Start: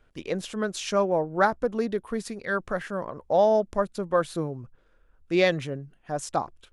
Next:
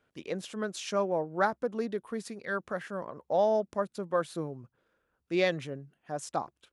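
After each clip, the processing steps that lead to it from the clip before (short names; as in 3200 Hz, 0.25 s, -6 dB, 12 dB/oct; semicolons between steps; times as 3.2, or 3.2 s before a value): HPF 120 Hz 12 dB/oct; gain -5.5 dB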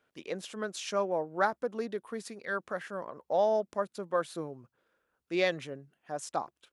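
low shelf 190 Hz -10 dB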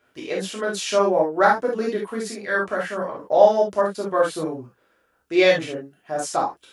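non-linear reverb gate 90 ms flat, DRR -3.5 dB; gain +6.5 dB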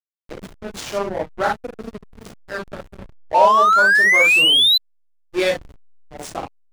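high shelf 3600 Hz +10.5 dB; painted sound rise, 3.34–4.78, 870–4100 Hz -9 dBFS; backlash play -14.5 dBFS; gain -3.5 dB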